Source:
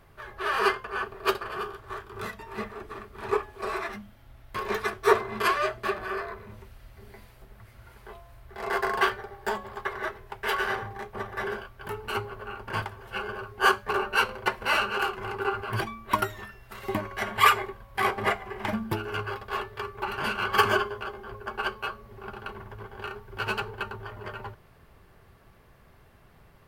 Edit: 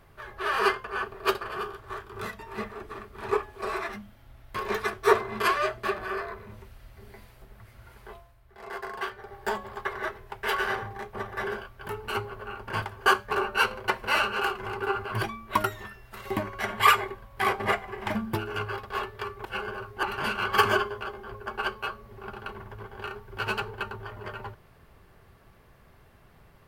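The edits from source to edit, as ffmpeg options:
-filter_complex "[0:a]asplit=6[s0][s1][s2][s3][s4][s5];[s0]atrim=end=8.34,asetpts=PTS-STARTPTS,afade=t=out:st=8.13:d=0.21:silence=0.334965[s6];[s1]atrim=start=8.34:end=9.14,asetpts=PTS-STARTPTS,volume=0.335[s7];[s2]atrim=start=9.14:end=13.062,asetpts=PTS-STARTPTS,afade=t=in:d=0.21:silence=0.334965[s8];[s3]atrim=start=13.638:end=20.032[s9];[s4]atrim=start=13.058:end=13.642[s10];[s5]atrim=start=20.028[s11];[s6][s7][s8]concat=n=3:v=0:a=1[s12];[s12][s9]acrossfade=d=0.004:c1=hsin:c2=hsin[s13];[s13][s10]acrossfade=d=0.004:c1=hsin:c2=hsin[s14];[s14][s11]acrossfade=d=0.004:c1=hsin:c2=hsin"

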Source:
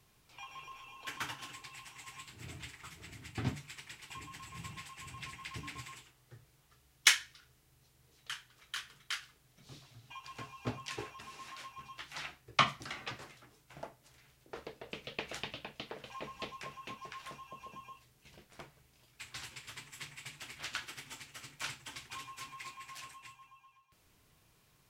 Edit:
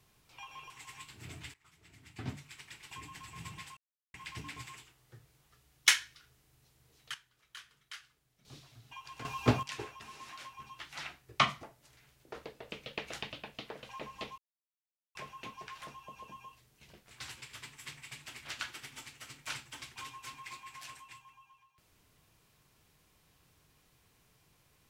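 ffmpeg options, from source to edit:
-filter_complex "[0:a]asplit=12[s0][s1][s2][s3][s4][s5][s6][s7][s8][s9][s10][s11];[s0]atrim=end=0.702[s12];[s1]atrim=start=1.888:end=2.73,asetpts=PTS-STARTPTS,afade=t=out:st=0.838:d=0.004:c=hsin:silence=0.0944061[s13];[s2]atrim=start=2.73:end=4.96,asetpts=PTS-STARTPTS,afade=t=in:d=1.36:silence=0.0944061,afade=t=out:st=2.226:d=0.004:c=hsin[s14];[s3]atrim=start=4.96:end=5.33,asetpts=PTS-STARTPTS,volume=0[s15];[s4]atrim=start=5.33:end=8.332,asetpts=PTS-STARTPTS,afade=t=in:d=0.004:c=hsin[s16];[s5]atrim=start=8.328:end=9.642,asetpts=PTS-STARTPTS,volume=0.355[s17];[s6]atrim=start=9.638:end=10.442[s18];[s7]atrim=start=10.438:end=10.822,asetpts=PTS-STARTPTS,volume=3.76[s19];[s8]atrim=start=10.818:end=12.822[s20];[s9]atrim=start=13.838:end=16.59,asetpts=PTS-STARTPTS,afade=t=out:st=2.748:d=0.004:c=hsin,apad=pad_dur=0.77[s21];[s10]atrim=start=16.59:end=18.552,asetpts=PTS-STARTPTS,afade=t=in:d=0.004:c=hsin[s22];[s11]atrim=start=19.248[s23];[s13][s14][s15][s16]concat=n=4:v=0:a=1[s24];[s12][s24]acrossfade=d=0.004:c1=hsin:c2=hsin[s25];[s25][s17]acrossfade=d=0.004:c1=hsin:c2=hsin[s26];[s26][s18]acrossfade=d=0.004:c1=hsin:c2=hsin[s27];[s27][s19]acrossfade=d=0.004:c1=hsin:c2=hsin[s28];[s28][s20]acrossfade=d=0.004:c1=hsin:c2=hsin[s29];[s21][s22]concat=n=2:v=0:a=1[s30];[s29][s30]acrossfade=d=0.004:c1=hsin:c2=hsin[s31];[s31][s23]acrossfade=d=0.004:c1=hsin:c2=hsin"

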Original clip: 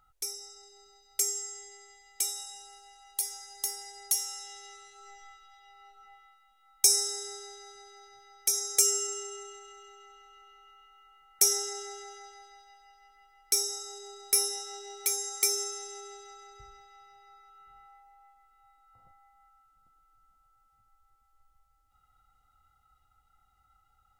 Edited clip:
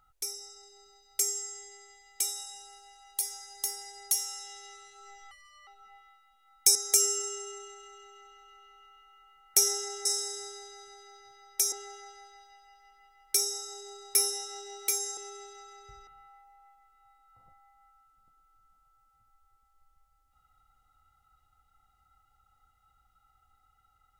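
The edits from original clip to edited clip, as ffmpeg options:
-filter_complex "[0:a]asplit=8[s0][s1][s2][s3][s4][s5][s6][s7];[s0]atrim=end=5.314[s8];[s1]atrim=start=5.31:end=5.85,asetpts=PTS-STARTPTS,asetrate=65709,aresample=44100[s9];[s2]atrim=start=5.846:end=6.932[s10];[s3]atrim=start=8.598:end=11.902[s11];[s4]atrim=start=6.928:end=8.602[s12];[s5]atrim=start=11.898:end=15.352[s13];[s6]atrim=start=15.878:end=16.782[s14];[s7]atrim=start=17.658[s15];[s8][s9]acrossfade=d=0.004:c1=hsin:c2=hsin[s16];[s16][s10]acrossfade=d=0.004:c1=hsin:c2=hsin[s17];[s17][s11]acrossfade=d=0.004:c1=hsin:c2=hsin[s18];[s18][s12]acrossfade=d=0.004:c1=hsin:c2=hsin[s19];[s19][s13]acrossfade=d=0.004:c1=hsin:c2=hsin[s20];[s20][s14]acrossfade=d=0.004:c1=hsin:c2=hsin[s21];[s21][s15]acrossfade=d=0.004:c1=hsin:c2=hsin"

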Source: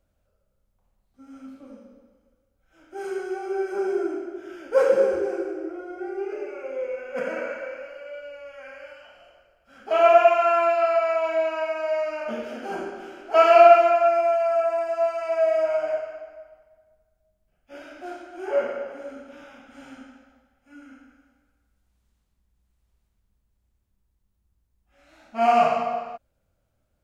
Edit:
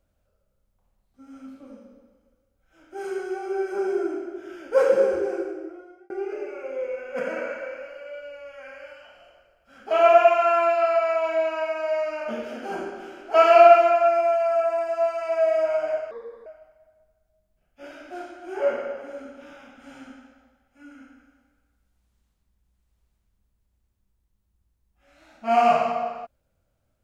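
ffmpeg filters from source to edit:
-filter_complex "[0:a]asplit=4[s0][s1][s2][s3];[s0]atrim=end=6.1,asetpts=PTS-STARTPTS,afade=t=out:st=5.39:d=0.71[s4];[s1]atrim=start=6.1:end=16.114,asetpts=PTS-STARTPTS,afade=t=in:d=0.004:c=hsin[s5];[s2]atrim=start=16.11:end=16.37,asetpts=PTS-STARTPTS,asetrate=32634,aresample=44100[s6];[s3]atrim=start=16.366[s7];[s4][s5]concat=n=2:v=0:a=1[s8];[s8][s6]acrossfade=d=0.004:c1=hsin:c2=hsin[s9];[s9][s7]acrossfade=d=0.004:c1=hsin:c2=hsin"

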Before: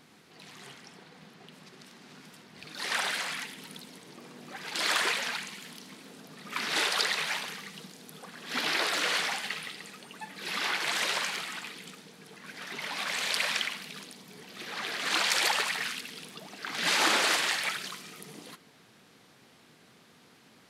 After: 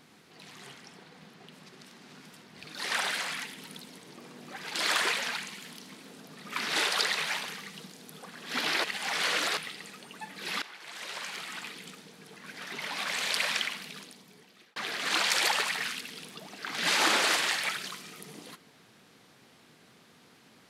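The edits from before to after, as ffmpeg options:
-filter_complex "[0:a]asplit=5[s0][s1][s2][s3][s4];[s0]atrim=end=8.842[s5];[s1]atrim=start=8.838:end=9.572,asetpts=PTS-STARTPTS,areverse[s6];[s2]atrim=start=9.568:end=10.62,asetpts=PTS-STARTPTS,afade=t=out:st=1.048:d=0.004:c=hsin:silence=0.125893[s7];[s3]atrim=start=10.62:end=14.76,asetpts=PTS-STARTPTS,afade=t=in:d=1.01:c=qua:silence=0.125893,afade=t=out:st=3.24:d=0.9[s8];[s4]atrim=start=14.76,asetpts=PTS-STARTPTS,afade=t=in:d=0.004:c=hsin[s9];[s5][s6]acrossfade=d=0.004:c1=hsin:c2=hsin[s10];[s7][s8][s9]concat=n=3:v=0:a=1[s11];[s10][s11]acrossfade=d=0.004:c1=hsin:c2=hsin"

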